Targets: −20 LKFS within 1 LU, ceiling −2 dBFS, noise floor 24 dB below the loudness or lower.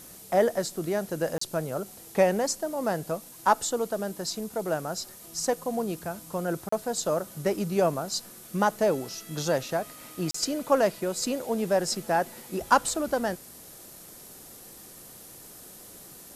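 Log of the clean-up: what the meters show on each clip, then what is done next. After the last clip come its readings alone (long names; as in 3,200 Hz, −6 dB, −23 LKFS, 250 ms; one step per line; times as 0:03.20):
number of dropouts 3; longest dropout 34 ms; background noise floor −48 dBFS; target noise floor −53 dBFS; integrated loudness −28.5 LKFS; sample peak −7.0 dBFS; target loudness −20.0 LKFS
→ repair the gap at 0:01.38/0:06.69/0:10.31, 34 ms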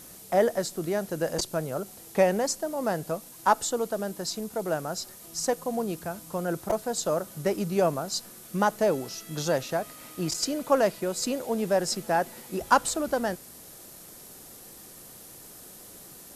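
number of dropouts 0; background noise floor −48 dBFS; target noise floor −53 dBFS
→ broadband denoise 6 dB, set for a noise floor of −48 dBFS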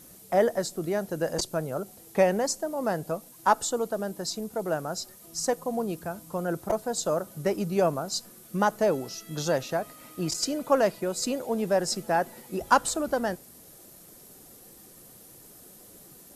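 background noise floor −51 dBFS; target noise floor −53 dBFS
→ broadband denoise 6 dB, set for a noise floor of −51 dBFS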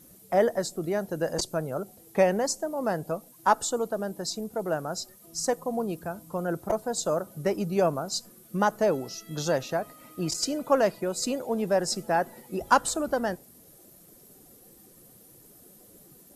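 background noise floor −54 dBFS; integrated loudness −28.5 LKFS; sample peak −7.0 dBFS; target loudness −20.0 LKFS
→ level +8.5 dB
brickwall limiter −2 dBFS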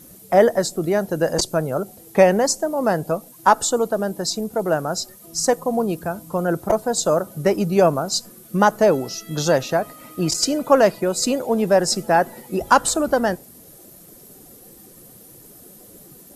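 integrated loudness −20.0 LKFS; sample peak −2.0 dBFS; background noise floor −46 dBFS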